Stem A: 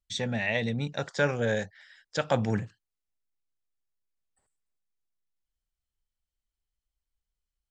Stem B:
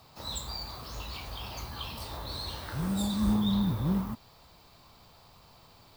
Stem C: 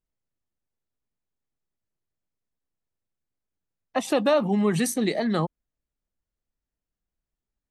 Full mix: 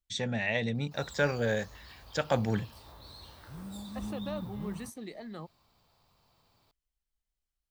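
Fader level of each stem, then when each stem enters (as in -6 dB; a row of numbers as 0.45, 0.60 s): -2.0, -12.5, -18.5 dB; 0.00, 0.75, 0.00 s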